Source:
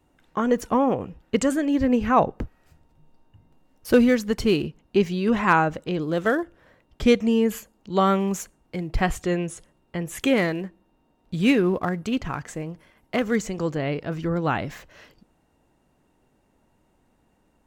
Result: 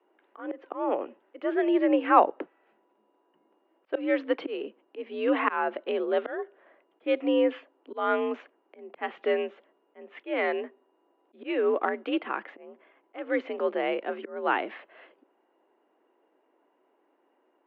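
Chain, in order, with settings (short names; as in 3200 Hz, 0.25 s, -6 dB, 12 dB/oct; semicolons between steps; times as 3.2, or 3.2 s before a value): auto swell 0.268 s; mistuned SSB +60 Hz 260–3100 Hz; mismatched tape noise reduction decoder only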